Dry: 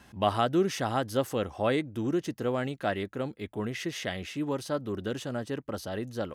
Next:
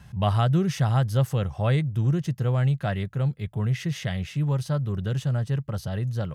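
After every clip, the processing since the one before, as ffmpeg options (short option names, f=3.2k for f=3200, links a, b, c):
-af "lowshelf=f=200:t=q:w=3:g=10.5"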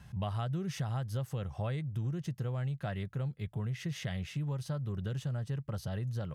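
-af "acompressor=threshold=-27dB:ratio=6,volume=-5dB"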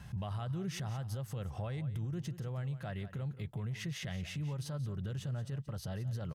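-af "alimiter=level_in=11dB:limit=-24dB:level=0:latency=1:release=137,volume=-11dB,aecho=1:1:178:0.2,volume=3.5dB"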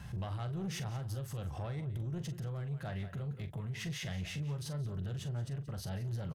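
-filter_complex "[0:a]asoftclip=type=tanh:threshold=-36.5dB,asplit=2[a][b];[b]adelay=42,volume=-10.5dB[c];[a][c]amix=inputs=2:normalize=0,volume=2.5dB"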